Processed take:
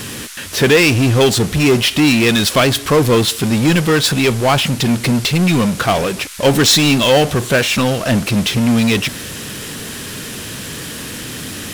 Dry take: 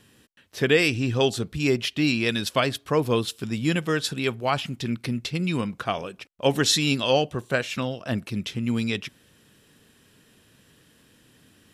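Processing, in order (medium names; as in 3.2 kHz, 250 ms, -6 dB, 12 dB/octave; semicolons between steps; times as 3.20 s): power-law waveshaper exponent 0.5; band noise 1.2–12 kHz -38 dBFS; trim +4.5 dB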